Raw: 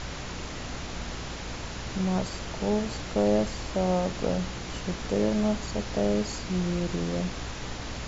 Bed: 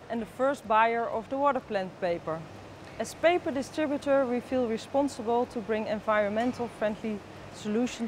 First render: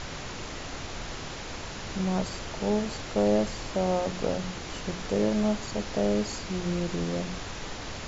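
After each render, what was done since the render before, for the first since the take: hum notches 60/120/180/240/300 Hz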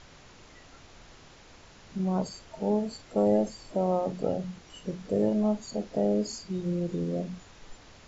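noise print and reduce 15 dB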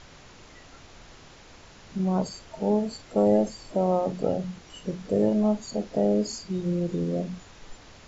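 trim +3 dB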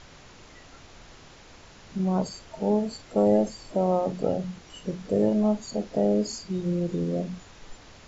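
no audible change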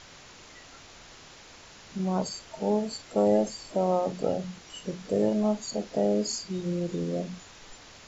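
tilt EQ +1.5 dB/octave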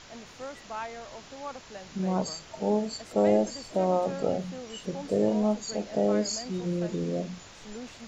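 add bed -13.5 dB

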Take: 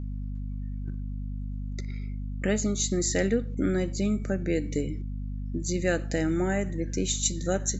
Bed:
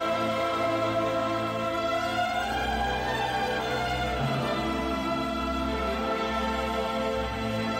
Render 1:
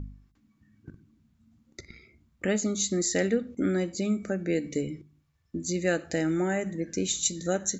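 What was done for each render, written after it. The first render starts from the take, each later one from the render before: de-hum 50 Hz, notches 5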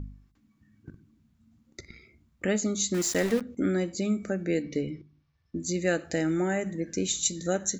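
2.94–3.41 s: small samples zeroed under -32 dBFS; 4.62–5.56 s: steep low-pass 5.9 kHz 48 dB/octave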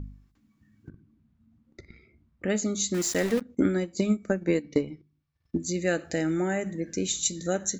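0.89–2.50 s: tape spacing loss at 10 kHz 23 dB; 3.37–5.58 s: transient shaper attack +7 dB, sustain -9 dB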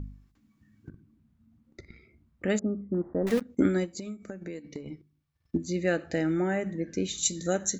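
2.59–3.27 s: Gaussian low-pass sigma 9.4 samples; 3.97–4.86 s: compression, threshold -35 dBFS; 5.57–7.18 s: distance through air 130 m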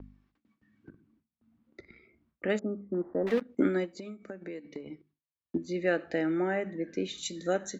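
gate with hold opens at -55 dBFS; three-band isolator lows -13 dB, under 230 Hz, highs -18 dB, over 4.2 kHz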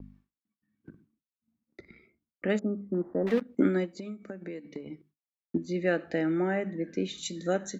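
expander -57 dBFS; peaking EQ 180 Hz +5 dB 1 oct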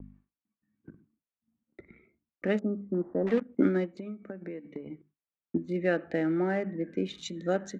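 local Wiener filter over 9 samples; Bessel low-pass 4.9 kHz, order 2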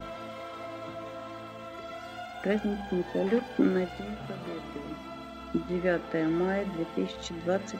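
add bed -13.5 dB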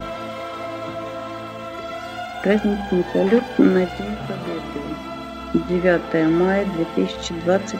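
trim +10.5 dB; peak limiter -3 dBFS, peak gain reduction 0.5 dB

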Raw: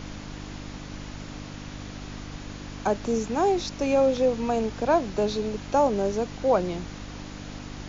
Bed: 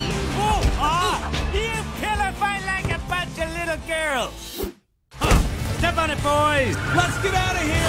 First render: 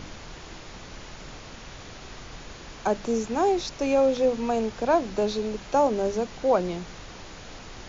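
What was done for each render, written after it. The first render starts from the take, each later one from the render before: de-hum 50 Hz, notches 6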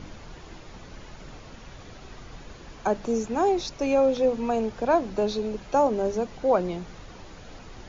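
noise reduction 7 dB, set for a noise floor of -43 dBFS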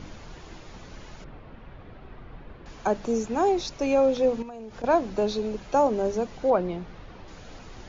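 1.24–2.66 s: distance through air 460 m; 4.42–4.84 s: compression 16:1, threshold -35 dBFS; 6.50–7.28 s: distance through air 170 m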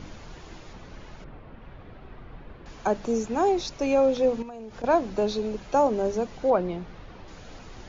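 0.73–1.62 s: low-pass 3.8 kHz 6 dB/octave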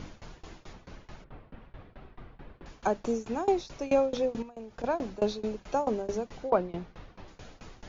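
tremolo saw down 4.6 Hz, depth 95%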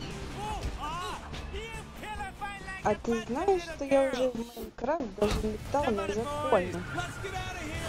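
add bed -15.5 dB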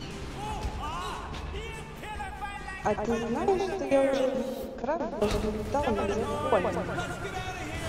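filtered feedback delay 121 ms, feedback 67%, low-pass 2.4 kHz, level -6 dB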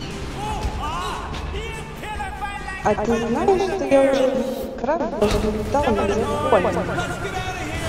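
trim +8.5 dB

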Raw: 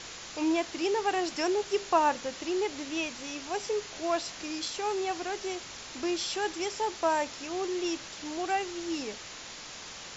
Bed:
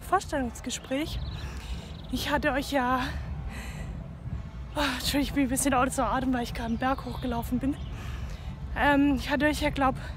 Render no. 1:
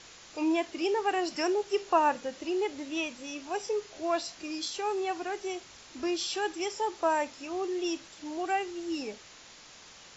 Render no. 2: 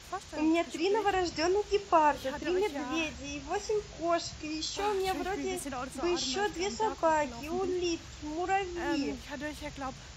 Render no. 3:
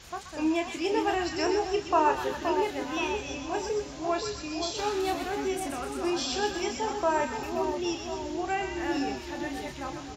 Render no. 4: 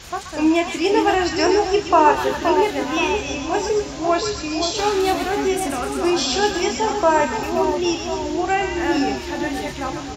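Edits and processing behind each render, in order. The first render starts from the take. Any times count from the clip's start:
noise print and reduce 8 dB
add bed -13.5 dB
doubling 29 ms -7.5 dB; two-band feedback delay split 1.1 kHz, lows 522 ms, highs 126 ms, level -6 dB
trim +10 dB; peak limiter -2 dBFS, peak gain reduction 1.5 dB

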